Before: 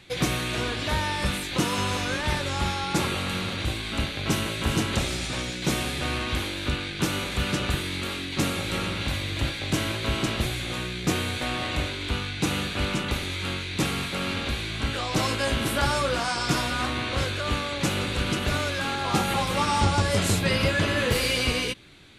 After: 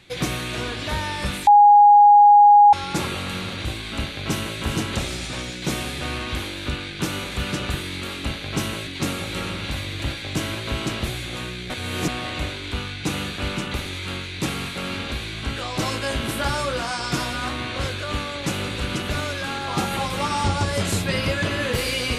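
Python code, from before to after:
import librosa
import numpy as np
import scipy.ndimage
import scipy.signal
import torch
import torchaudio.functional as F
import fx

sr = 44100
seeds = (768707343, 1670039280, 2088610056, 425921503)

y = fx.edit(x, sr, fx.bleep(start_s=1.47, length_s=1.26, hz=824.0, db=-7.5),
    fx.duplicate(start_s=3.97, length_s=0.63, to_s=8.24),
    fx.reverse_span(start_s=11.07, length_s=0.38), tone=tone)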